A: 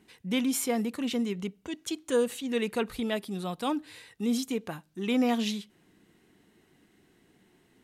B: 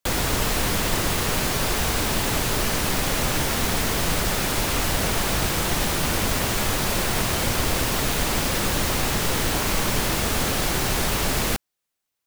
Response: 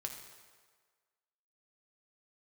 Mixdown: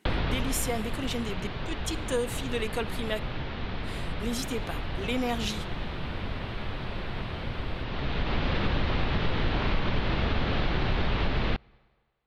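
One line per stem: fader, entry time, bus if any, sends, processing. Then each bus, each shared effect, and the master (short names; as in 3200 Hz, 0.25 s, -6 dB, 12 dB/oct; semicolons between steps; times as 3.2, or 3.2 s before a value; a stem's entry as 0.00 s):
+1.0 dB, 0.00 s, muted 3.2–3.82, send -14 dB, HPF 450 Hz 6 dB/oct
-0.5 dB, 0.00 s, send -24 dB, steep low-pass 3900 Hz 36 dB/oct; low shelf 180 Hz +7 dB; auto duck -14 dB, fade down 0.85 s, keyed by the first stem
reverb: on, RT60 1.6 s, pre-delay 4 ms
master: compressor 3:1, threshold -24 dBFS, peak gain reduction 8 dB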